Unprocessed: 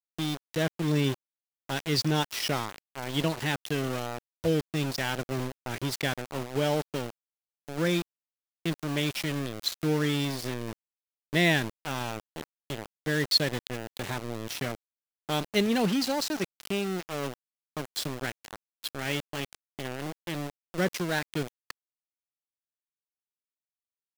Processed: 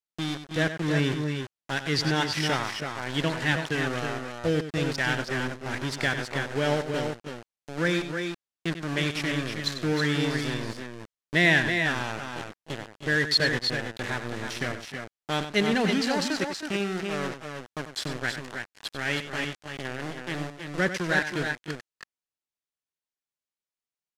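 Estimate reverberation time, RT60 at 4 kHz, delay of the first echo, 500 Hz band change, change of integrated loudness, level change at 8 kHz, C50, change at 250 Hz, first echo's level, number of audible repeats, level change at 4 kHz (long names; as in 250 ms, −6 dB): no reverb audible, no reverb audible, 95 ms, +1.5 dB, +2.5 dB, −0.5 dB, no reverb audible, +1.5 dB, −10.5 dB, 2, +2.0 dB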